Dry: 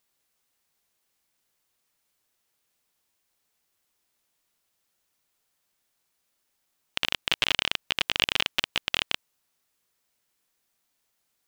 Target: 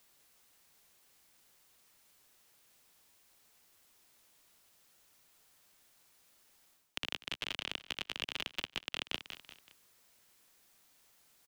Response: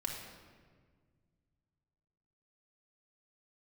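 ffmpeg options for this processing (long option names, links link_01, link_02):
-filter_complex "[0:a]acrossover=split=140|410[link_01][link_02][link_03];[link_01]acompressor=threshold=-56dB:ratio=4[link_04];[link_02]acompressor=threshold=-51dB:ratio=4[link_05];[link_03]acompressor=threshold=-33dB:ratio=4[link_06];[link_04][link_05][link_06]amix=inputs=3:normalize=0,aecho=1:1:189|378|567:0.126|0.0529|0.0222,areverse,acompressor=threshold=-43dB:ratio=5,areverse,volume=8.5dB"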